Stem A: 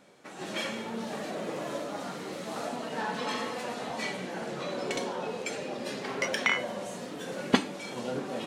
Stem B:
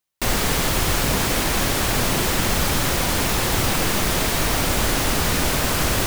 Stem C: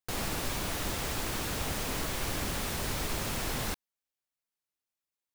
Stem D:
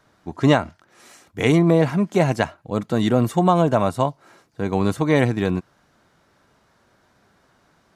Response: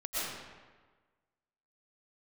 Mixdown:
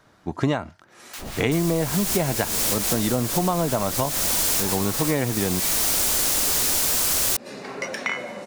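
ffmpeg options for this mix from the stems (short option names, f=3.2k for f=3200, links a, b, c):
-filter_complex "[0:a]bandreject=f=3.2k:w=6.2,adelay=1600,volume=0dB,asplit=2[a][b];[b]volume=-19.5dB[c];[1:a]bass=f=250:g=-7,treble=f=4k:g=14,adelay=1300,volume=1.5dB[d];[2:a]acrossover=split=1000[e][f];[e]aeval=exprs='val(0)*(1-1/2+1/2*cos(2*PI*4.7*n/s))':c=same[g];[f]aeval=exprs='val(0)*(1-1/2-1/2*cos(2*PI*4.7*n/s))':c=same[h];[g][h]amix=inputs=2:normalize=0,adelay=1050,volume=-0.5dB,asplit=2[i][j];[j]volume=-3.5dB[k];[3:a]volume=3dB,asplit=2[l][m];[m]apad=whole_len=324843[n];[d][n]sidechaincompress=threshold=-21dB:ratio=8:attack=16:release=629[o];[4:a]atrim=start_sample=2205[p];[c][k]amix=inputs=2:normalize=0[q];[q][p]afir=irnorm=-1:irlink=0[r];[a][o][i][l][r]amix=inputs=5:normalize=0,acompressor=threshold=-19dB:ratio=6"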